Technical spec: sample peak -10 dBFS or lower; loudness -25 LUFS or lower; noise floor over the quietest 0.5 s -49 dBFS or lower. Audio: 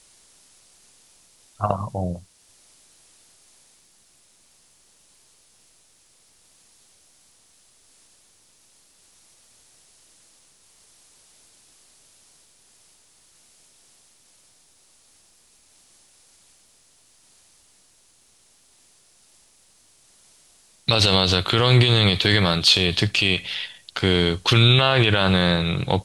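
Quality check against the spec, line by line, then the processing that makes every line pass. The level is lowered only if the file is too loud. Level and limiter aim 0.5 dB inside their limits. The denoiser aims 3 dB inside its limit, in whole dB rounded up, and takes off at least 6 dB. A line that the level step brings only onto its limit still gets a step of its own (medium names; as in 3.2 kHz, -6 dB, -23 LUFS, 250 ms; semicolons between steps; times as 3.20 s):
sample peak -4.5 dBFS: fail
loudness -18.5 LUFS: fail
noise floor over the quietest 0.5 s -58 dBFS: pass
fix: trim -7 dB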